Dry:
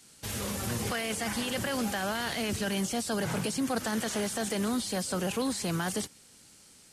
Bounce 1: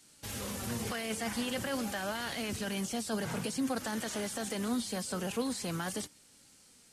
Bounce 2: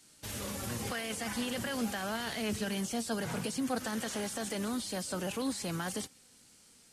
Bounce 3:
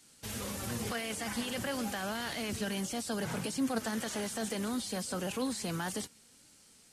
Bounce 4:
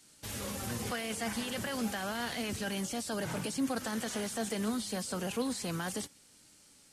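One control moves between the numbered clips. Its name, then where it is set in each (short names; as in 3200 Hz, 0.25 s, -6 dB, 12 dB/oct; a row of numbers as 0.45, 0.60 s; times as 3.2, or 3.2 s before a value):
flange, rate: 0.49, 0.2, 1.7, 0.31 Hz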